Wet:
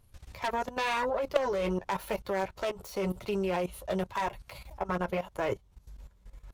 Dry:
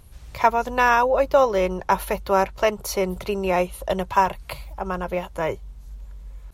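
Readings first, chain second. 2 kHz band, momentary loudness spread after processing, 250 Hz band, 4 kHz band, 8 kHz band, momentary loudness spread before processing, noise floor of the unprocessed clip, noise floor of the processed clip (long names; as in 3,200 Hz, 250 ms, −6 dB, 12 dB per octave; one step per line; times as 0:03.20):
−10.5 dB, 7 LU, −6.0 dB, −6.0 dB, −12.0 dB, 18 LU, −44 dBFS, −62 dBFS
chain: phase distortion by the signal itself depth 0.24 ms
flanger 0.93 Hz, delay 8.5 ms, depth 3.8 ms, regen −18%
wave folding −11.5 dBFS
output level in coarse steps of 16 dB
level +2.5 dB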